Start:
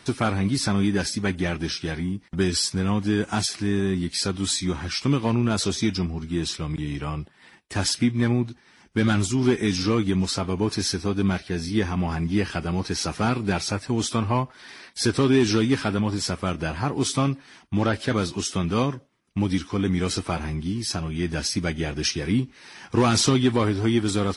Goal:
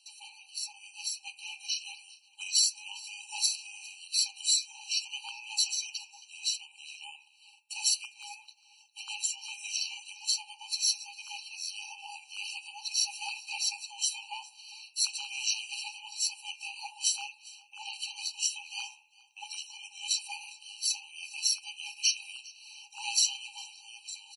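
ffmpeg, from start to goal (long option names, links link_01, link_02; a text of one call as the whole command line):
ffmpeg -i in.wav -af "asuperstop=centerf=1400:order=12:qfactor=0.78,lowshelf=frequency=90:gain=-5.5,dynaudnorm=framelen=190:gausssize=13:maxgain=11dB,bandreject=frequency=70.82:width_type=h:width=4,bandreject=frequency=141.64:width_type=h:width=4,bandreject=frequency=212.46:width_type=h:width=4,bandreject=frequency=283.28:width_type=h:width=4,bandreject=frequency=354.1:width_type=h:width=4,bandreject=frequency=424.92:width_type=h:width=4,bandreject=frequency=495.74:width_type=h:width=4,bandreject=frequency=566.56:width_type=h:width=4,bandreject=frequency=637.38:width_type=h:width=4,bandreject=frequency=708.2:width_type=h:width=4,bandreject=frequency=779.02:width_type=h:width=4,bandreject=frequency=849.84:width_type=h:width=4,bandreject=frequency=920.66:width_type=h:width=4,bandreject=frequency=991.48:width_type=h:width=4,bandreject=frequency=1062.3:width_type=h:width=4,bandreject=frequency=1133.12:width_type=h:width=4,bandreject=frequency=1203.94:width_type=h:width=4,bandreject=frequency=1274.76:width_type=h:width=4,bandreject=frequency=1345.58:width_type=h:width=4,bandreject=frequency=1416.4:width_type=h:width=4,bandreject=frequency=1487.22:width_type=h:width=4,bandreject=frequency=1558.04:width_type=h:width=4,bandreject=frequency=1628.86:width_type=h:width=4,bandreject=frequency=1699.68:width_type=h:width=4,bandreject=frequency=1770.5:width_type=h:width=4,bandreject=frequency=1841.32:width_type=h:width=4,bandreject=frequency=1912.14:width_type=h:width=4,bandreject=frequency=1982.96:width_type=h:width=4,bandreject=frequency=2053.78:width_type=h:width=4,bandreject=frequency=2124.6:width_type=h:width=4,bandreject=frequency=2195.42:width_type=h:width=4,bandreject=frequency=2266.24:width_type=h:width=4,bandreject=frequency=2337.06:width_type=h:width=4,bandreject=frequency=2407.88:width_type=h:width=4,bandreject=frequency=2478.7:width_type=h:width=4,bandreject=frequency=2549.52:width_type=h:width=4,bandreject=frequency=2620.34:width_type=h:width=4,bandreject=frequency=2691.16:width_type=h:width=4,bandreject=frequency=2761.98:width_type=h:width=4,bandreject=frequency=2832.8:width_type=h:width=4,asubboost=boost=11.5:cutoff=66,aecho=1:1:404:0.075,afftfilt=real='re*eq(mod(floor(b*sr/1024/780),2),1)':imag='im*eq(mod(floor(b*sr/1024/780),2),1)':win_size=1024:overlap=0.75,volume=-5.5dB" out.wav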